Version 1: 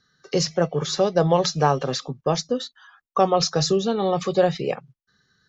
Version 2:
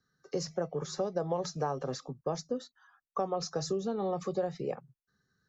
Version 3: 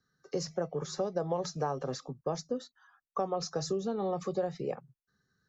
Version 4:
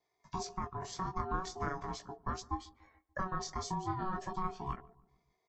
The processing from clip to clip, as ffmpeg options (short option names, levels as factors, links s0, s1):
-filter_complex "[0:a]equalizer=f=3100:t=o:w=1.4:g=-13,acrossover=split=210|1300[s0][s1][s2];[s0]alimiter=level_in=1.78:limit=0.0631:level=0:latency=1,volume=0.562[s3];[s3][s1][s2]amix=inputs=3:normalize=0,acompressor=threshold=0.1:ratio=4,volume=0.398"
-af anull
-filter_complex "[0:a]flanger=delay=16:depth=7.7:speed=0.43,aeval=exprs='val(0)*sin(2*PI*560*n/s)':c=same,asplit=2[s0][s1];[s1]adelay=145,lowpass=f=1000:p=1,volume=0.0944,asplit=2[s2][s3];[s3]adelay=145,lowpass=f=1000:p=1,volume=0.54,asplit=2[s4][s5];[s5]adelay=145,lowpass=f=1000:p=1,volume=0.54,asplit=2[s6][s7];[s7]adelay=145,lowpass=f=1000:p=1,volume=0.54[s8];[s0][s2][s4][s6][s8]amix=inputs=5:normalize=0,volume=1.19"